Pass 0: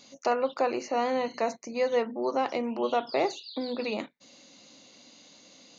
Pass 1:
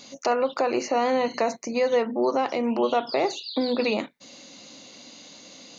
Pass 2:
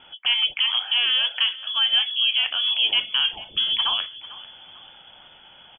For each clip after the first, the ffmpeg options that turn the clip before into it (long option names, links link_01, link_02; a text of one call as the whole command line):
ffmpeg -i in.wav -af "alimiter=limit=-22dB:level=0:latency=1:release=156,volume=8dB" out.wav
ffmpeg -i in.wav -filter_complex "[0:a]asplit=4[link_01][link_02][link_03][link_04];[link_02]adelay=445,afreqshift=-41,volume=-17.5dB[link_05];[link_03]adelay=890,afreqshift=-82,volume=-25.7dB[link_06];[link_04]adelay=1335,afreqshift=-123,volume=-33.9dB[link_07];[link_01][link_05][link_06][link_07]amix=inputs=4:normalize=0,lowpass=frequency=3100:width_type=q:width=0.5098,lowpass=frequency=3100:width_type=q:width=0.6013,lowpass=frequency=3100:width_type=q:width=0.9,lowpass=frequency=3100:width_type=q:width=2.563,afreqshift=-3600,volume=1.5dB" out.wav